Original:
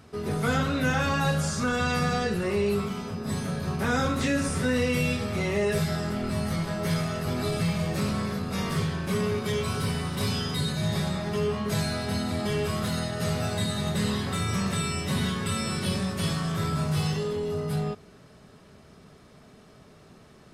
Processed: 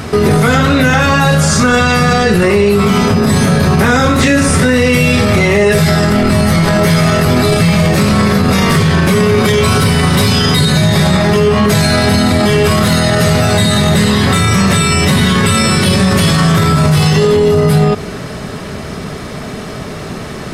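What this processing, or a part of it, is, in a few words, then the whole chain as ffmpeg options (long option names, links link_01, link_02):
loud club master: -af "acompressor=threshold=-29dB:ratio=2.5,asoftclip=type=hard:threshold=-22dB,alimiter=level_in=30dB:limit=-1dB:release=50:level=0:latency=1,equalizer=frequency=2000:width=3.4:gain=3,volume=-1.5dB"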